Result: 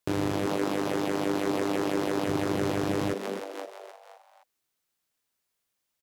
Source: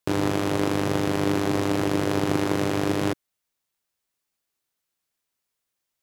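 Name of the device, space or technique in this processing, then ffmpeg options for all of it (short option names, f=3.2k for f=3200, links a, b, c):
soft clipper into limiter: -filter_complex "[0:a]asettb=1/sr,asplit=3[a][b][c];[a]atrim=end=0.464[d];[b]atrim=start=0.46:end=2.26,asetpts=PTS-STARTPTS,afade=t=in:d=0.004:c=qsin,afade=t=out:st=1.796:d=0.004:c=qsin,highpass=200[e];[c]atrim=start=2.256[f];[d][e]acrossfade=d=0.004:c1=hsin:c2=qsin[g];[g][f]acrossfade=d=0.004:c1=qsin:c2=hsin,asplit=6[h][i][j][k][l][m];[i]adelay=260,afreqshift=94,volume=-8dB[n];[j]adelay=520,afreqshift=188,volume=-14.7dB[o];[k]adelay=780,afreqshift=282,volume=-21.5dB[p];[l]adelay=1040,afreqshift=376,volume=-28.2dB[q];[m]adelay=1300,afreqshift=470,volume=-35dB[r];[h][n][o][p][q][r]amix=inputs=6:normalize=0,asoftclip=type=tanh:threshold=-12.5dB,alimiter=limit=-17dB:level=0:latency=1:release=496"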